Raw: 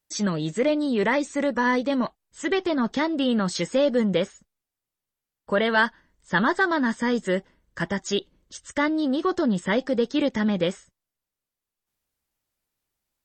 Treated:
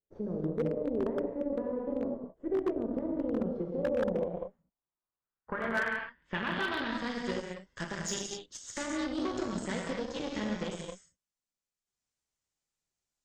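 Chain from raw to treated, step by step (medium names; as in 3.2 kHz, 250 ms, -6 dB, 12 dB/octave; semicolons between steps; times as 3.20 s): compression 8:1, threshold -27 dBFS, peak gain reduction 11 dB; gated-style reverb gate 280 ms flat, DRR -2.5 dB; Chebyshev shaper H 3 -43 dB, 5 -23 dB, 7 -20 dB, 8 -21 dB, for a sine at -12.5 dBFS; low-pass sweep 470 Hz -> 7.1 kHz, 3.79–7.79 s; wavefolder -14 dBFS; trim -8.5 dB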